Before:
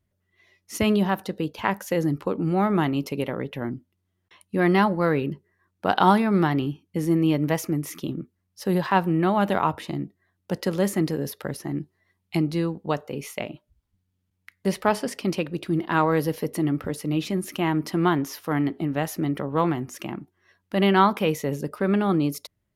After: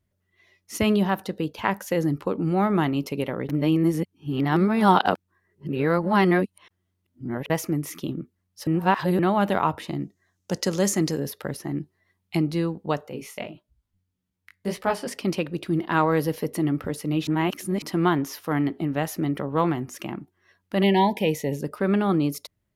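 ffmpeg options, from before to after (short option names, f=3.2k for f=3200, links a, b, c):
-filter_complex "[0:a]asettb=1/sr,asplit=3[a][b][c];[a]atrim=end=10.004[d];[b]atrim=start=10:end=11.2,asetpts=PTS-STARTPTS,afade=t=in:d=0.004:c=qsin,afade=t=out:st=1.196:d=0.004:c=qsin,equalizer=f=6.4k:w=1.5:g=14[e];[c]atrim=start=11.196[f];[d][e]acrossfade=d=0.004:c1=hsin:c2=qsin[g];[g][f]acrossfade=d=0.004:c1=qsin:c2=hsin,asettb=1/sr,asplit=3[h][i][j];[h]atrim=end=13.094[k];[i]atrim=start=13.09:end=15.07,asetpts=PTS-STARTPTS,afade=t=in:d=0.004:c=qsin,afade=t=out:st=1.976:d=0.004:c=qsin,flanger=delay=15.5:depth=6.1:speed=1.7[l];[j]atrim=start=15.066[m];[k][l]acrossfade=d=0.004:c1=hsin:c2=qsin[n];[n][m]acrossfade=d=0.004:c1=qsin:c2=hsin,asplit=3[o][p][q];[o]afade=t=out:st=20.82:d=0.02[r];[p]asuperstop=centerf=1300:order=20:qfactor=1.8,afade=t=in:st=20.82:d=0.02,afade=t=out:st=21.59:d=0.02[s];[q]afade=t=in:st=21.59:d=0.02[t];[r][s][t]amix=inputs=3:normalize=0,asplit=7[u][v][w][x][y][z][aa];[u]atrim=end=3.492[ab];[v]atrim=start=3.488:end=7.502,asetpts=PTS-STARTPTS,areverse[ac];[w]atrim=start=7.498:end=8.672[ad];[x]atrim=start=8.668:end=9.192,asetpts=PTS-STARTPTS,areverse[ae];[y]atrim=start=9.188:end=17.272[af];[z]atrim=start=17.268:end=17.822,asetpts=PTS-STARTPTS,areverse[ag];[aa]atrim=start=17.818[ah];[ab][ac]acrossfade=d=0.004:c1=hsin:c2=hsin[ai];[ai][ad]acrossfade=d=0.004:c1=hsin:c2=hsin[aj];[aj][ae]acrossfade=d=0.004:c1=hsin:c2=hsin[ak];[ak][af]acrossfade=d=0.004:c1=hsin:c2=hsin[al];[al][ag]acrossfade=d=0.004:c1=hsin:c2=hsin[am];[am][ah]acrossfade=d=0.004:c1=hsin:c2=hsin"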